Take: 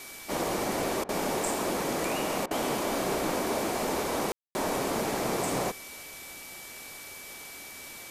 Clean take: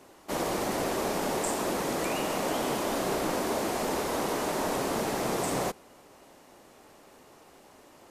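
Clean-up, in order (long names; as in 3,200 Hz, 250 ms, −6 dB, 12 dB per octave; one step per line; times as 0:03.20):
notch filter 2,300 Hz, Q 30
ambience match 0:04.32–0:04.55
repair the gap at 0:01.04/0:02.46, 48 ms
noise reduction from a noise print 11 dB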